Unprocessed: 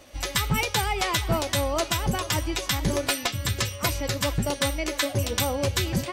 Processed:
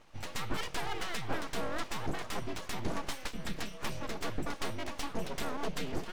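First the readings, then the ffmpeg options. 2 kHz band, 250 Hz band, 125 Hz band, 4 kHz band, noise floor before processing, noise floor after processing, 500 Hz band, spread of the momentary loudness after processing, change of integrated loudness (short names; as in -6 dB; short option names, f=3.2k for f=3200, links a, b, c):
-11.0 dB, -10.0 dB, -16.0 dB, -14.5 dB, -39 dBFS, -47 dBFS, -12.0 dB, 3 LU, -13.0 dB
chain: -af "aemphasis=mode=reproduction:type=75kf,aeval=exprs='abs(val(0))':c=same,volume=-6.5dB"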